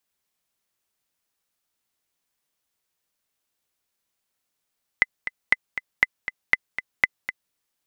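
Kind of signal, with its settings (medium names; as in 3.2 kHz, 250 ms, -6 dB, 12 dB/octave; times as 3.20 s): metronome 238 bpm, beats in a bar 2, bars 5, 2.03 kHz, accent 11.5 dB -2.5 dBFS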